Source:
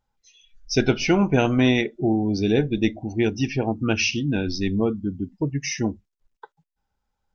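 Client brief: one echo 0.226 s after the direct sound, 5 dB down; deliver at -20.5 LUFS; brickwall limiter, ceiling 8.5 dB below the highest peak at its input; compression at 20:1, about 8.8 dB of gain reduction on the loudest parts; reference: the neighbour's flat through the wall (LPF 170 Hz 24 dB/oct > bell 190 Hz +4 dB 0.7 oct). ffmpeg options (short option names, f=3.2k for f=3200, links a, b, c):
-af "acompressor=threshold=-22dB:ratio=20,alimiter=limit=-21.5dB:level=0:latency=1,lowpass=f=170:w=0.5412,lowpass=f=170:w=1.3066,equalizer=f=190:t=o:w=0.7:g=4,aecho=1:1:226:0.562,volume=15dB"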